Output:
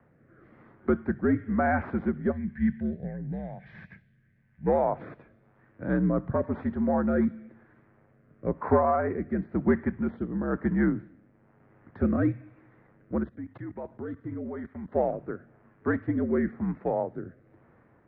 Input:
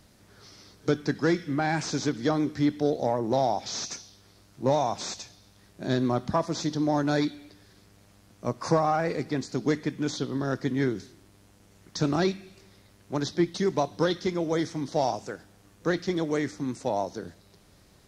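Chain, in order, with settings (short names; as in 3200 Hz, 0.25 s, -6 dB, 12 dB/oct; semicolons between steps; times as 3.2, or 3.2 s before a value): 13.23–14.92 level quantiser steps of 18 dB; mistuned SSB -71 Hz 170–2000 Hz; rotary speaker horn 1 Hz; 2.32–4.67 spectral gain 230–1500 Hz -17 dB; gain +3 dB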